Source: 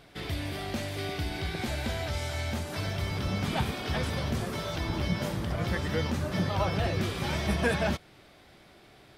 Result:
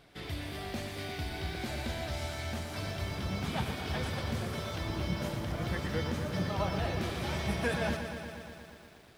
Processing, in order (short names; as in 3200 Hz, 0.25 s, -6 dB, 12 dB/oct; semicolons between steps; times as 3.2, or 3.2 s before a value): lo-fi delay 0.118 s, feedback 80%, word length 9-bit, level -8.5 dB; gain -5 dB